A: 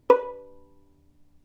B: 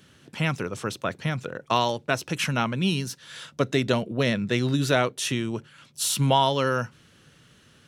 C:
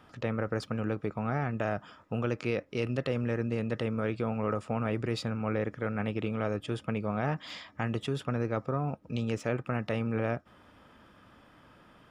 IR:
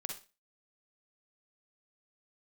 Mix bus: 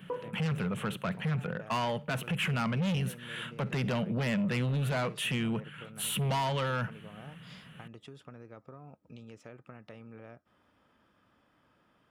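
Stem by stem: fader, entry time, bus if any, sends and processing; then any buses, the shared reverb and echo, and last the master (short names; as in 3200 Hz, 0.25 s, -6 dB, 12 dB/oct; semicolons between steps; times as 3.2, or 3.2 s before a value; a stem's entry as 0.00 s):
-12.5 dB, 0.00 s, no send, LPF 1500 Hz
-0.5 dB, 0.00 s, send -16.5 dB, EQ curve 100 Hz 0 dB, 180 Hz +13 dB, 300 Hz -8 dB, 450 Hz 0 dB, 3000 Hz +4 dB, 5100 Hz -24 dB, 10000 Hz -3 dB; soft clip -21.5 dBFS, distortion -7 dB
-11.0 dB, 0.00 s, no send, compressor, threshold -33 dBFS, peak gain reduction 8.5 dB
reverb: on, RT60 0.30 s, pre-delay 41 ms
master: low shelf 62 Hz -7.5 dB; limiter -25.5 dBFS, peak gain reduction 9 dB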